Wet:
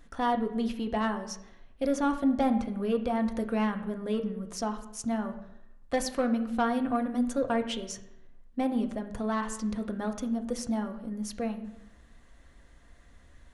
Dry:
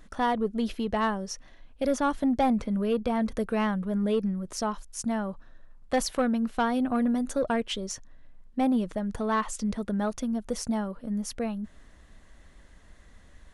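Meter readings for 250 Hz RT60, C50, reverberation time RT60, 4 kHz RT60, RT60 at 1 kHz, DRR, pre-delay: 0.75 s, 11.0 dB, 0.85 s, 0.65 s, 0.85 s, 5.0 dB, 3 ms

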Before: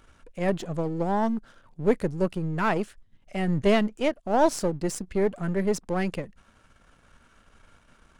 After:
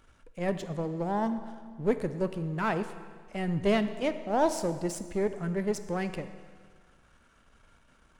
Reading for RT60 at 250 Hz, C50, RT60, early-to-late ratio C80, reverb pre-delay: 1.7 s, 11.5 dB, 1.7 s, 12.5 dB, 18 ms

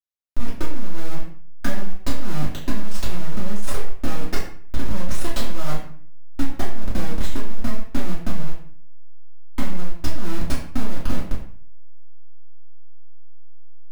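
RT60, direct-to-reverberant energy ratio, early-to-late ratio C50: 0.50 s, −9.0 dB, 5.0 dB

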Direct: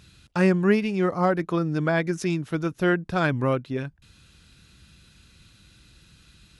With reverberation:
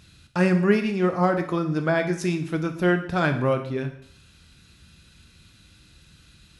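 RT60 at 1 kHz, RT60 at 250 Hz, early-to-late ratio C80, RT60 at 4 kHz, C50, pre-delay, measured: 0.60 s, 0.65 s, 13.0 dB, 0.60 s, 10.5 dB, 5 ms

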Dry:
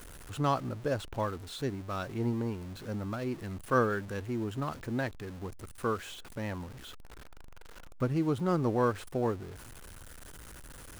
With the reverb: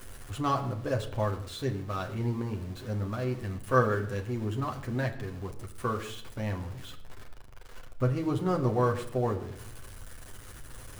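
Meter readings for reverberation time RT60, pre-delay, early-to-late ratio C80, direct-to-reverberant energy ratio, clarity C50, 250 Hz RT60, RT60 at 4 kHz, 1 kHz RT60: 0.70 s, 8 ms, 14.5 dB, 1.5 dB, 13.0 dB, 0.95 s, 0.55 s, 0.60 s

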